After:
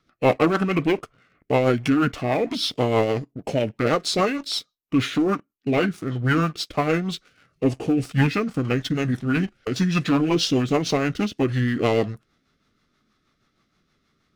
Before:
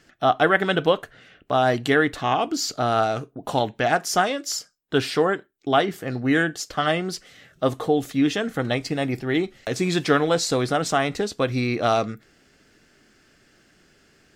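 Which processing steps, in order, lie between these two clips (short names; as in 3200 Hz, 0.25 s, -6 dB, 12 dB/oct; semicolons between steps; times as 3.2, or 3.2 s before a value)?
sample leveller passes 2; formant shift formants -5 st; rotary speaker horn 6.3 Hz; gain -4 dB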